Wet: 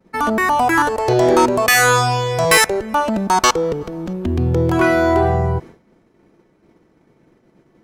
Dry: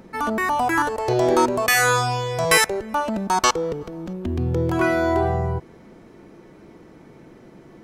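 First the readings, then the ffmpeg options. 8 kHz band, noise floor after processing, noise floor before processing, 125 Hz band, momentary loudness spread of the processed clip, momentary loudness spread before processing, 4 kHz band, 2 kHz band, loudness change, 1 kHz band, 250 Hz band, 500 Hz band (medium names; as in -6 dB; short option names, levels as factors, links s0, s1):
+4.5 dB, -58 dBFS, -48 dBFS, +5.5 dB, 9 LU, 11 LU, +4.5 dB, +4.5 dB, +5.0 dB, +5.0 dB, +5.5 dB, +5.0 dB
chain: -af "agate=range=0.0224:threshold=0.0178:ratio=3:detection=peak,aeval=exprs='0.668*(cos(1*acos(clip(val(0)/0.668,-1,1)))-cos(1*PI/2))+0.0668*(cos(5*acos(clip(val(0)/0.668,-1,1)))-cos(5*PI/2))':c=same,volume=1.33"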